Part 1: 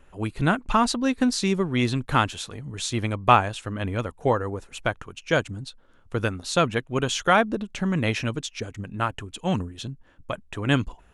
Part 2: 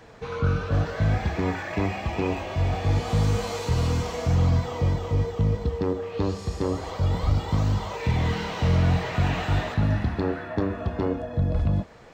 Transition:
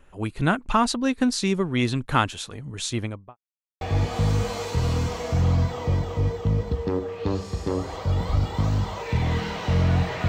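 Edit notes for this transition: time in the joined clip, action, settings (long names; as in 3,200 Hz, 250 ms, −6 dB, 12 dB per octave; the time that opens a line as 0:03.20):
part 1
0:02.89–0:03.37: fade out and dull
0:03.37–0:03.81: silence
0:03.81: continue with part 2 from 0:02.75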